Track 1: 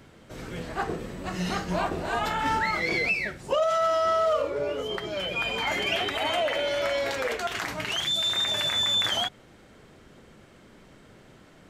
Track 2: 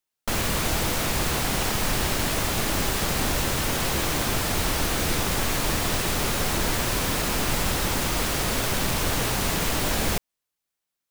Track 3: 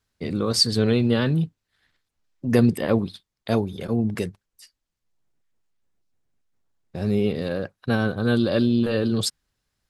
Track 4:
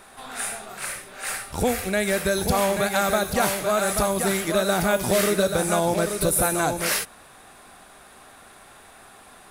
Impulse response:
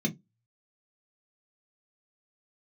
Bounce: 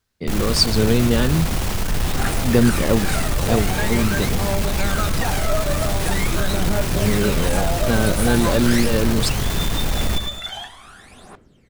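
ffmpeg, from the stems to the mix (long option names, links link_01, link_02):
-filter_complex "[0:a]adelay=1400,volume=-8.5dB,asplit=2[link_01][link_02];[link_02]volume=-13dB[link_03];[1:a]lowshelf=frequency=180:gain=12,asoftclip=type=tanh:threshold=-15dB,volume=-0.5dB,asplit=2[link_04][link_05];[link_05]volume=-7.5dB[link_06];[2:a]volume=2dB[link_07];[3:a]lowpass=7900,adelay=1850,volume=2.5dB[link_08];[link_01][link_08]amix=inputs=2:normalize=0,aphaser=in_gain=1:out_gain=1:delay=1.8:decay=0.7:speed=0.44:type=triangular,acompressor=threshold=-23dB:ratio=6,volume=0dB[link_09];[link_03][link_06]amix=inputs=2:normalize=0,aecho=0:1:108|216|324|432|540|648:1|0.41|0.168|0.0689|0.0283|0.0116[link_10];[link_04][link_07][link_09][link_10]amix=inputs=4:normalize=0"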